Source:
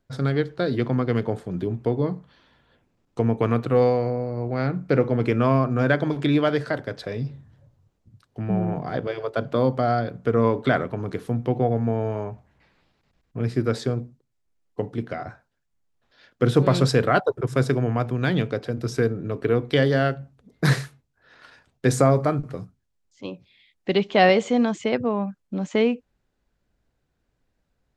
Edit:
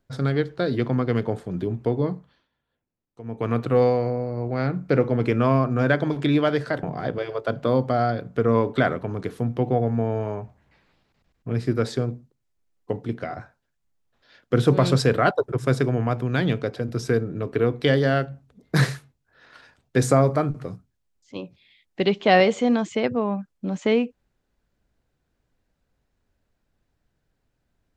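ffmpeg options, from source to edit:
ffmpeg -i in.wav -filter_complex "[0:a]asplit=4[link_01][link_02][link_03][link_04];[link_01]atrim=end=2.48,asetpts=PTS-STARTPTS,afade=type=out:start_time=2.1:duration=0.38:silence=0.125893[link_05];[link_02]atrim=start=2.48:end=3.23,asetpts=PTS-STARTPTS,volume=-18dB[link_06];[link_03]atrim=start=3.23:end=6.832,asetpts=PTS-STARTPTS,afade=type=in:duration=0.38:silence=0.125893[link_07];[link_04]atrim=start=8.718[link_08];[link_05][link_06][link_07]concat=n=3:v=0:a=1[link_09];[link_09][link_08]acrossfade=duration=0.004:curve1=hsin:curve2=hsin" out.wav

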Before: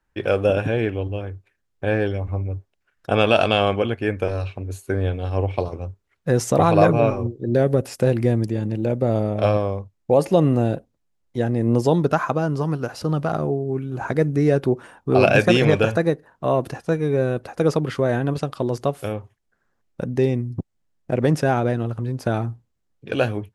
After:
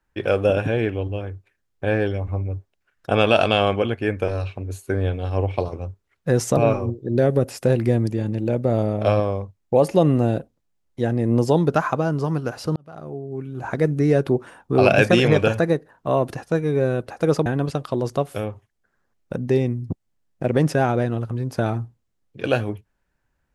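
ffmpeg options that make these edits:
ffmpeg -i in.wav -filter_complex "[0:a]asplit=4[link_01][link_02][link_03][link_04];[link_01]atrim=end=6.572[link_05];[link_02]atrim=start=6.938:end=13.13,asetpts=PTS-STARTPTS,afade=type=out:start_time=6.188:duration=0.004:curve=hsin[link_06];[link_03]atrim=start=13.13:end=17.832,asetpts=PTS-STARTPTS,afade=type=in:duration=1.14[link_07];[link_04]atrim=start=18.138[link_08];[link_06][link_07]concat=n=2:v=0:a=1[link_09];[link_05][link_09]acrossfade=duration=0.004:curve1=hsin:curve2=hsin[link_10];[link_10][link_08]acrossfade=duration=0.004:curve1=hsin:curve2=hsin" out.wav

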